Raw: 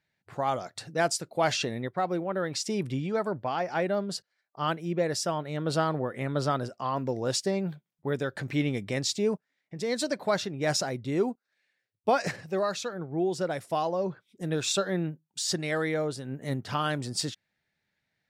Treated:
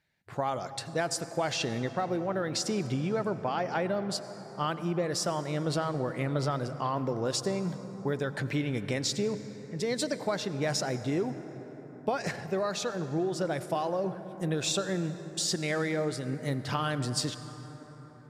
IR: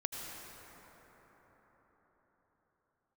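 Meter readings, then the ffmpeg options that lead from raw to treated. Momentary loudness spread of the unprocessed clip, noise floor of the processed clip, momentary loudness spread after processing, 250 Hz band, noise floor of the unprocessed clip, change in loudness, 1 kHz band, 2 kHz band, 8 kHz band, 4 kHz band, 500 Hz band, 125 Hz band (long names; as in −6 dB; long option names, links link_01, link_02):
7 LU, −47 dBFS, 6 LU, −0.5 dB, −82 dBFS, −1.5 dB, −2.5 dB, −2.0 dB, −1.0 dB, −1.0 dB, −2.0 dB, +0.5 dB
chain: -filter_complex "[0:a]acompressor=threshold=-29dB:ratio=6,asplit=2[link_01][link_02];[1:a]atrim=start_sample=2205,lowshelf=frequency=110:gain=10[link_03];[link_02][link_03]afir=irnorm=-1:irlink=0,volume=-9dB[link_04];[link_01][link_04]amix=inputs=2:normalize=0,aresample=32000,aresample=44100"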